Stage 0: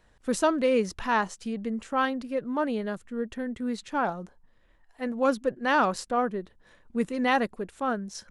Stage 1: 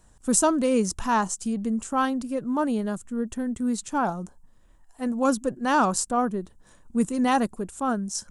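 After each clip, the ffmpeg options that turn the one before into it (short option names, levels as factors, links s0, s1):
-af "equalizer=f=500:t=o:w=1:g=-7,equalizer=f=2000:t=o:w=1:g=-11,equalizer=f=4000:t=o:w=1:g=-7,equalizer=f=8000:t=o:w=1:g=11,volume=2.11"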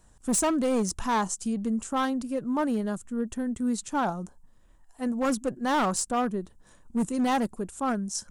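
-af "volume=9.44,asoftclip=hard,volume=0.106,volume=0.841"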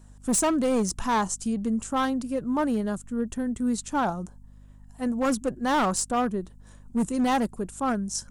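-af "aeval=exprs='val(0)+0.00316*(sin(2*PI*50*n/s)+sin(2*PI*2*50*n/s)/2+sin(2*PI*3*50*n/s)/3+sin(2*PI*4*50*n/s)/4+sin(2*PI*5*50*n/s)/5)':c=same,volume=1.19"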